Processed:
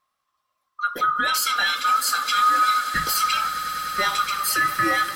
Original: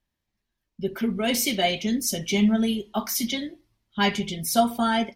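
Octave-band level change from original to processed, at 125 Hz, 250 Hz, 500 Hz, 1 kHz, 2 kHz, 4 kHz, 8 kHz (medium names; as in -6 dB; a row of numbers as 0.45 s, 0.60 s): -10.0 dB, -14.5 dB, -9.5 dB, +9.5 dB, +9.5 dB, +3.0 dB, +2.0 dB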